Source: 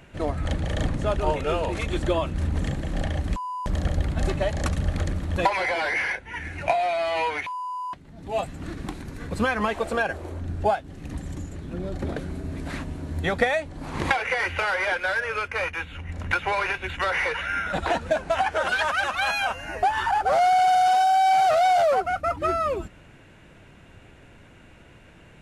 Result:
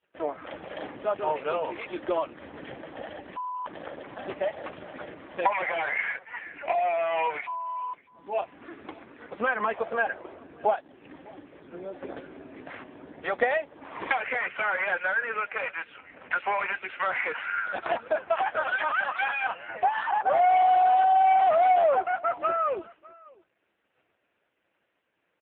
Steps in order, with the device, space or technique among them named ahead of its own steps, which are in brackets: dynamic EQ 170 Hz, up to -3 dB, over -46 dBFS, Q 4.5; expander -39 dBFS; satellite phone (BPF 390–3400 Hz; echo 0.605 s -23.5 dB; AMR-NB 5.15 kbps 8000 Hz)

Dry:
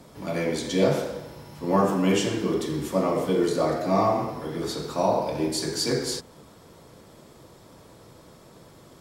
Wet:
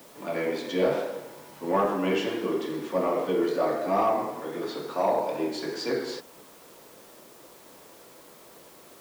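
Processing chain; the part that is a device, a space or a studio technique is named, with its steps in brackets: tape answering machine (BPF 300–3100 Hz; soft clip -14 dBFS, distortion -22 dB; wow and flutter; white noise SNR 25 dB)

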